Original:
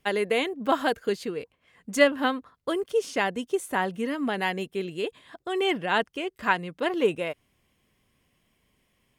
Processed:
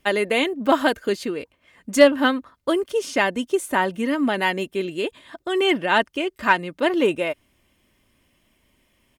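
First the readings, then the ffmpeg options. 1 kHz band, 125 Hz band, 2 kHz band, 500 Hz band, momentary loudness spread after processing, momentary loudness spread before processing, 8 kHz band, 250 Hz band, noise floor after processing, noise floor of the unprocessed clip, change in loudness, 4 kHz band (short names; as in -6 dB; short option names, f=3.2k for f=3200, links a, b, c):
+5.0 dB, +3.0 dB, +5.5 dB, +5.5 dB, 10 LU, 10 LU, +6.0 dB, +7.0 dB, -67 dBFS, -72 dBFS, +5.5 dB, +5.5 dB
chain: -filter_complex "[0:a]aecho=1:1:3.3:0.38,asplit=2[a][b];[b]volume=12dB,asoftclip=hard,volume=-12dB,volume=-7dB[c];[a][c]amix=inputs=2:normalize=0,volume=2dB"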